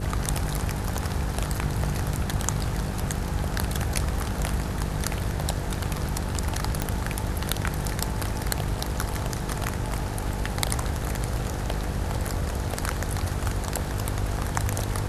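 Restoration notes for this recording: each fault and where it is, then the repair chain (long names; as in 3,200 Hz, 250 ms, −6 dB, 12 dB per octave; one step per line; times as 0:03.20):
mains buzz 50 Hz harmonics 10 −32 dBFS
0:06.82: click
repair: click removal
hum removal 50 Hz, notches 10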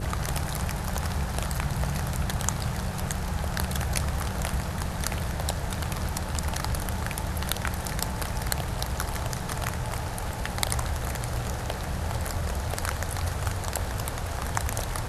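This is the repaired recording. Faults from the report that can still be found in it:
none of them is left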